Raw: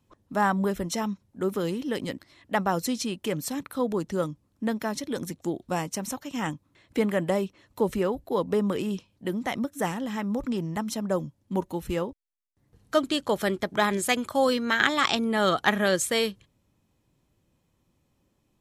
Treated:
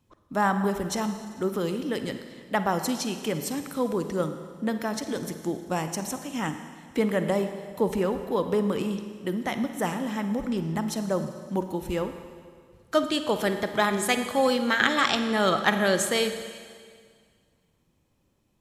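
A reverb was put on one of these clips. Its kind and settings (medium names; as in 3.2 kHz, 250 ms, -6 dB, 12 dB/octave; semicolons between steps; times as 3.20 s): Schroeder reverb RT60 1.9 s, DRR 8 dB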